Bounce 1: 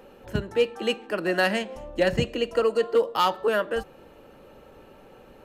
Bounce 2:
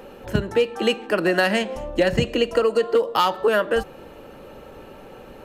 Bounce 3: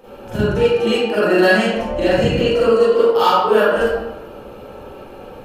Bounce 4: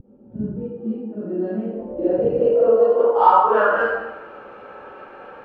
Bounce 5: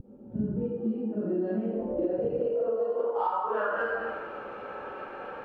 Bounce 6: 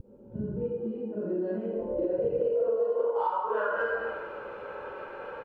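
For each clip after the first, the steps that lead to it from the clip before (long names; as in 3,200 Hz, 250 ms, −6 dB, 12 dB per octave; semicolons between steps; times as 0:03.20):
downward compressor, threshold −23 dBFS, peak gain reduction 7.5 dB; level +8 dB
parametric band 1,900 Hz −5.5 dB 0.33 octaves; convolution reverb RT60 1.1 s, pre-delay 36 ms, DRR −12 dB; level −6.5 dB
RIAA equalisation recording; pitch vibrato 0.38 Hz 20 cents; low-pass filter sweep 220 Hz → 1,600 Hz, 0:01.20–0:04.09; level −3.5 dB
downward compressor 16 to 1, threshold −25 dBFS, peak gain reduction 18 dB
comb filter 2 ms, depth 45%; level −1.5 dB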